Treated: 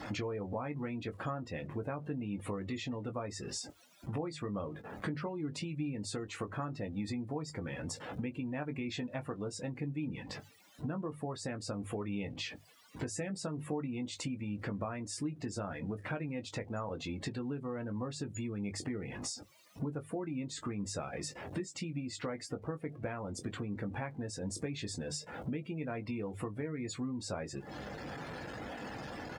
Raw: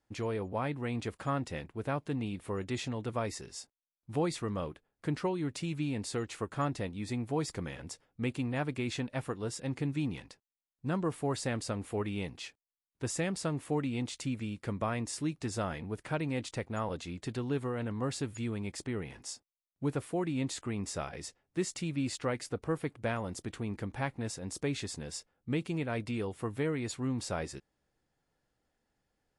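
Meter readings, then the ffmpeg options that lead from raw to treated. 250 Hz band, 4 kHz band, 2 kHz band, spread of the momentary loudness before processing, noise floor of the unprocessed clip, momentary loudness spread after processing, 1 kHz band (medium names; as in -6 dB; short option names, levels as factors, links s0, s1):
-3.0 dB, -1.5 dB, -3.0 dB, 7 LU, under -85 dBFS, 4 LU, -4.5 dB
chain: -filter_complex "[0:a]aeval=exprs='val(0)+0.5*0.00531*sgn(val(0))':c=same,bandreject=f=50:t=h:w=6,bandreject=f=100:t=h:w=6,bandreject=f=150:t=h:w=6,acompressor=threshold=0.00501:ratio=10,highpass=77,highshelf=f=7100:g=-4.5,bandreject=f=390:w=13,asplit=2[s0][s1];[s1]adelay=20,volume=0.422[s2];[s0][s2]amix=inputs=2:normalize=0,afftdn=nr=21:nf=-58,volume=3.35"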